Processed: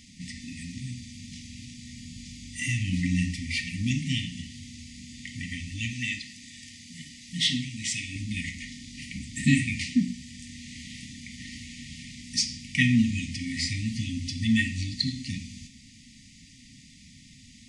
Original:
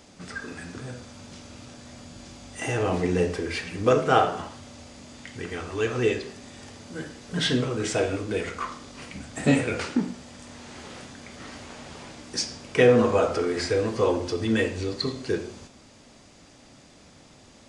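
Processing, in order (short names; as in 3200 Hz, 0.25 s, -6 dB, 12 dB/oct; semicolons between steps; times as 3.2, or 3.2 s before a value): brick-wall FIR band-stop 280–1800 Hz; 5.93–8.16 low shelf 330 Hz -10 dB; gain +2.5 dB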